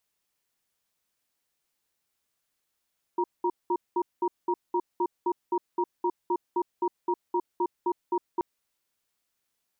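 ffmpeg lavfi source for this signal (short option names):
-f lavfi -i "aevalsrc='0.0531*(sin(2*PI*355*t)+sin(2*PI*945*t))*clip(min(mod(t,0.26),0.06-mod(t,0.26))/0.005,0,1)':d=5.23:s=44100"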